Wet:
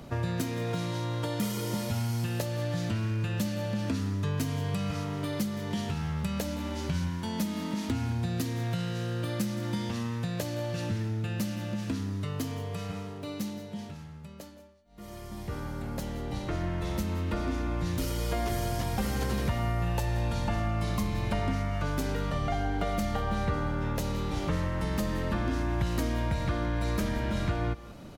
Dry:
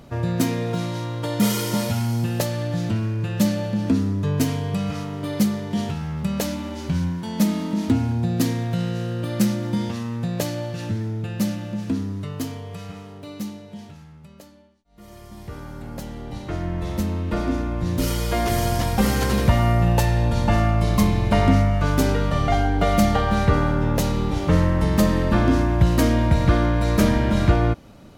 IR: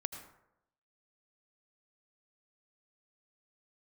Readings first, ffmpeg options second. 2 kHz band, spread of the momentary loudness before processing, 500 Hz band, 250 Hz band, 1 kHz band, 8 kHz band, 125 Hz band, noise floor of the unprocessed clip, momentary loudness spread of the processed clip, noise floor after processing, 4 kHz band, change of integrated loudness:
−8.0 dB, 12 LU, −9.5 dB, −10.5 dB, −9.5 dB, −9.0 dB, −9.0 dB, −44 dBFS, 6 LU, −44 dBFS, −7.5 dB, −10.0 dB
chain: -filter_complex "[0:a]acrossover=split=81|970[link_01][link_02][link_03];[link_01]acompressor=threshold=-35dB:ratio=4[link_04];[link_02]acompressor=threshold=-32dB:ratio=4[link_05];[link_03]acompressor=threshold=-40dB:ratio=4[link_06];[link_04][link_05][link_06]amix=inputs=3:normalize=0,aecho=1:1:169|191:0.126|0.126"

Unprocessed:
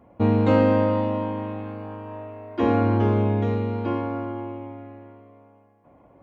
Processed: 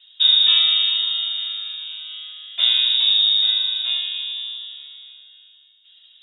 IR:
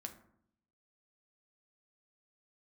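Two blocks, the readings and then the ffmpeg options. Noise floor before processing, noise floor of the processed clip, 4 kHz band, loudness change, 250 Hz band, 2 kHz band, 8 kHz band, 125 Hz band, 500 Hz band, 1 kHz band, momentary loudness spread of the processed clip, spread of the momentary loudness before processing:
−56 dBFS, −53 dBFS, +34.0 dB, +6.5 dB, below −40 dB, +4.5 dB, can't be measured, below −40 dB, below −30 dB, below −15 dB, 18 LU, 18 LU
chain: -filter_complex "[1:a]atrim=start_sample=2205,atrim=end_sample=3087[link_01];[0:a][link_01]afir=irnorm=-1:irlink=0,lowpass=frequency=3300:width_type=q:width=0.5098,lowpass=frequency=3300:width_type=q:width=0.6013,lowpass=frequency=3300:width_type=q:width=0.9,lowpass=frequency=3300:width_type=q:width=2.563,afreqshift=-3900,volume=6.5dB"

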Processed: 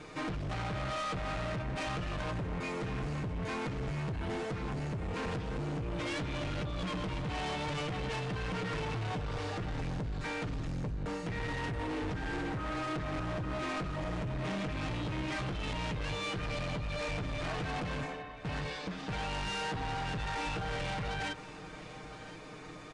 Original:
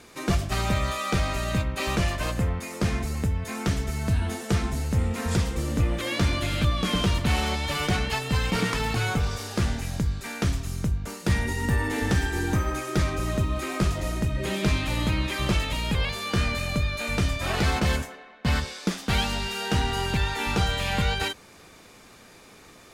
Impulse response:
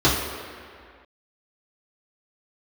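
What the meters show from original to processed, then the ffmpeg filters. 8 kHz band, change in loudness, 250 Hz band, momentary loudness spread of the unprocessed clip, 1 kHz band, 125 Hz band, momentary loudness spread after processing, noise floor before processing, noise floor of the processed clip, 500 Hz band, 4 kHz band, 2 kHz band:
−15.5 dB, −10.0 dB, −9.5 dB, 4 LU, −6.5 dB, −11.0 dB, 3 LU, −50 dBFS, −47 dBFS, −7.0 dB, −11.5 dB, −9.0 dB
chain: -filter_complex "[0:a]aemphasis=mode=reproduction:type=75kf,acrossover=split=4400[link_01][link_02];[link_02]acompressor=threshold=-60dB:ratio=4:attack=1:release=60[link_03];[link_01][link_03]amix=inputs=2:normalize=0,equalizer=frequency=110:width_type=o:width=0.77:gain=2.5,aecho=1:1:6.5:0.86,acompressor=threshold=-26dB:ratio=6,alimiter=limit=-21.5dB:level=0:latency=1:release=169,volume=35.5dB,asoftclip=hard,volume=-35.5dB,asplit=2[link_04][link_05];[link_05]aecho=0:1:1021:0.158[link_06];[link_04][link_06]amix=inputs=2:normalize=0,aresample=22050,aresample=44100,volume=1.5dB"

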